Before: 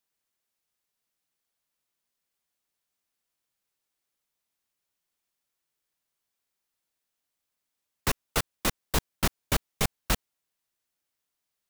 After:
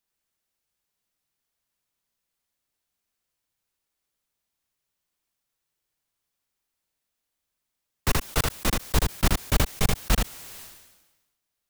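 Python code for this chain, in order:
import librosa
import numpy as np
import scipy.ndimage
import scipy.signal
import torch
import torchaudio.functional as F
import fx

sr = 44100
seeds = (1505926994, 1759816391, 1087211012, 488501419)

y = fx.low_shelf(x, sr, hz=120.0, db=7.5)
y = y + 10.0 ** (-4.5 / 20.0) * np.pad(y, (int(79 * sr / 1000.0), 0))[:len(y)]
y = fx.sustainer(y, sr, db_per_s=51.0)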